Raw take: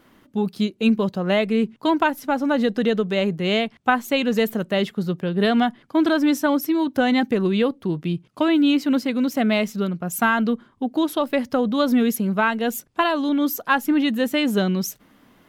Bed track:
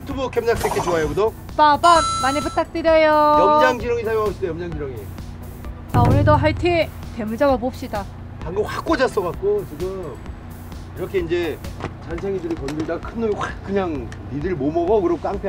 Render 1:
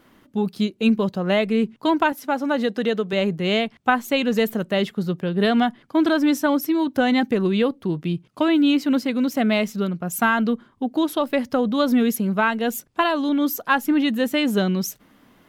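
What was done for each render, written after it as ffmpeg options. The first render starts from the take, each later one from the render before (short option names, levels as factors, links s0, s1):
-filter_complex "[0:a]asettb=1/sr,asplit=3[s0][s1][s2];[s0]atrim=end=2.124[s3];[s1]atrim=start=2.12:end=3.13,asetpts=PTS-STARTPTS,afade=t=in:d=0.004:c=qsin,afade=t=out:st=1.006:d=0.004:c=qsin,highpass=f=250:p=1[s4];[s2]atrim=start=3.126[s5];[s3][s4]acrossfade=d=0.004:c1=hsin:c2=qsin[s6];[s6][s5]acrossfade=d=0.004:c1=qsin:c2=hsin"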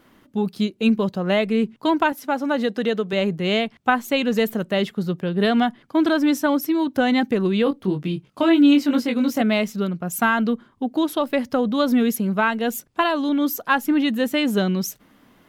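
-filter_complex "[0:a]asettb=1/sr,asplit=3[s0][s1][s2];[s0]atrim=end=7.644[s3];[s1]atrim=start=7.64:end=9.42,asetpts=PTS-STARTPTS,afade=t=in:d=0.004:c=qsin,afade=t=out:st=1.776:d=0.004:c=qsin,asplit=2[s4][s5];[s5]adelay=21,volume=0.631[s6];[s4][s6]amix=inputs=2:normalize=0,atrim=end_sample=78498[s7];[s2]atrim=start=9.416[s8];[s3][s7]acrossfade=d=0.004:c1=hsin:c2=qsin[s9];[s9][s8]acrossfade=d=0.004:c1=qsin:c2=hsin"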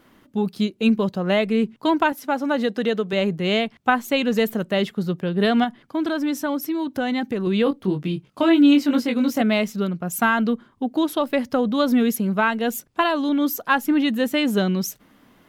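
-filter_complex "[0:a]asettb=1/sr,asplit=3[s0][s1][s2];[s0]atrim=end=5.644[s3];[s1]atrim=start=5.64:end=7.47,asetpts=PTS-STARTPTS,afade=t=in:d=0.004:c=qsin,afade=t=out:st=1.826:d=0.004:c=qsin,acompressor=threshold=0.0398:ratio=1.5:attack=3.2:release=140:knee=1:detection=peak[s4];[s2]atrim=start=7.466[s5];[s3][s4]acrossfade=d=0.004:c1=hsin:c2=qsin[s6];[s6][s5]acrossfade=d=0.004:c1=qsin:c2=hsin"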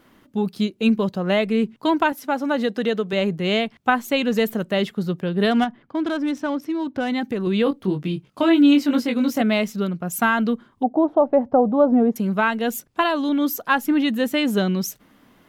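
-filter_complex "[0:a]asplit=3[s0][s1][s2];[s0]afade=t=out:st=5.5:d=0.02[s3];[s1]adynamicsmooth=sensitivity=4.5:basefreq=2700,afade=t=in:st=5.5:d=0.02,afade=t=out:st=7.08:d=0.02[s4];[s2]afade=t=in:st=7.08:d=0.02[s5];[s3][s4][s5]amix=inputs=3:normalize=0,asettb=1/sr,asplit=3[s6][s7][s8];[s6]atrim=end=10.834[s9];[s7]atrim=start=10.83:end=12.16,asetpts=PTS-STARTPTS,afade=t=in:d=0.004:c=qsin,afade=t=out:st=1.326:d=0.004:c=qsin,lowpass=f=750:t=q:w=3.4[s10];[s8]atrim=start=12.156[s11];[s9][s10]acrossfade=d=0.004:c1=hsin:c2=qsin[s12];[s12][s11]acrossfade=d=0.004:c1=qsin:c2=hsin"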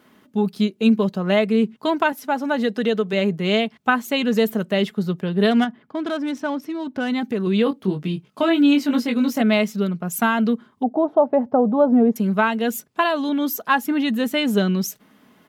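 -af "highpass=98,aecho=1:1:4.7:0.33"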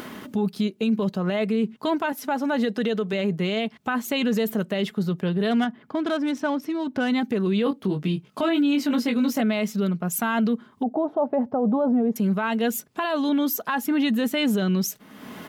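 -af "alimiter=limit=0.168:level=0:latency=1:release=26,acompressor=mode=upward:threshold=0.0631:ratio=2.5"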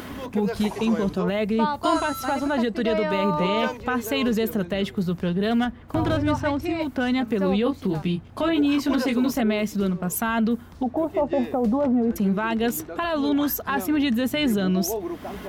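-filter_complex "[1:a]volume=0.251[s0];[0:a][s0]amix=inputs=2:normalize=0"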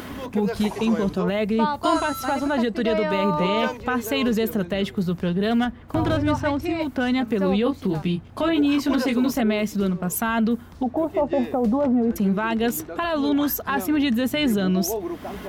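-af "volume=1.12"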